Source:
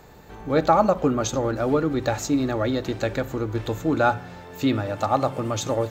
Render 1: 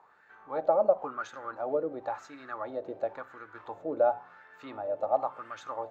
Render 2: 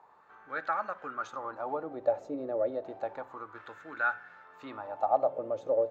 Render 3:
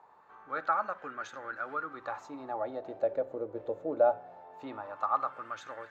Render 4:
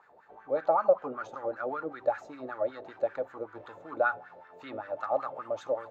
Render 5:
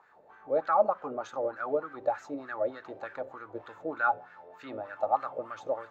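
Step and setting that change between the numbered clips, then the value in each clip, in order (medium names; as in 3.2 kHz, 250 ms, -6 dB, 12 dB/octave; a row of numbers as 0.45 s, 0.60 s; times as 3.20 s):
wah-wah, rate: 0.95 Hz, 0.31 Hz, 0.21 Hz, 5.2 Hz, 3.3 Hz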